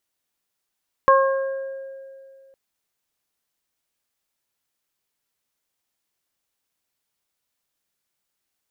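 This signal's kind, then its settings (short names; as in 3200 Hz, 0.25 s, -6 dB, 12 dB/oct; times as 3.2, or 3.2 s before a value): additive tone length 1.46 s, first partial 539 Hz, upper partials 4/-9 dB, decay 2.43 s, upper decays 0.76/1.63 s, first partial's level -14 dB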